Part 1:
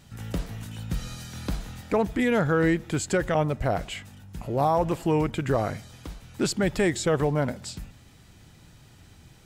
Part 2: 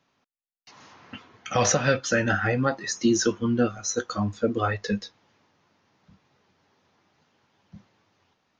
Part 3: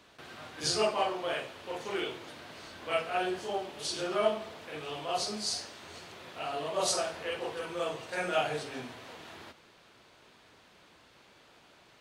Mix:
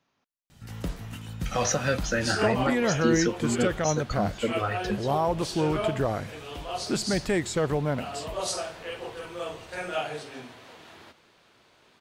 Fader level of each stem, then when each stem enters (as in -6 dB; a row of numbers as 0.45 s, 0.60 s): -2.5 dB, -4.0 dB, -1.0 dB; 0.50 s, 0.00 s, 1.60 s